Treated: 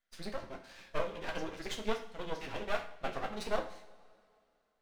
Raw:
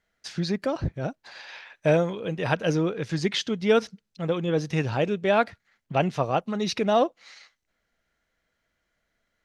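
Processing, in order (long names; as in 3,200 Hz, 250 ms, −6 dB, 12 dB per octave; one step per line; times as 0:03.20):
high-pass filter 540 Hz 6 dB per octave
dynamic equaliser 7,800 Hz, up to −5 dB, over −51 dBFS, Q 0.89
flanger 0.58 Hz, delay 9.1 ms, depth 1.8 ms, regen −48%
phase-vocoder stretch with locked phases 0.51×
flanger 1.4 Hz, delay 9.1 ms, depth 6.1 ms, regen −28%
half-wave rectification
convolution reverb, pre-delay 3 ms, DRR 4 dB
level +2 dB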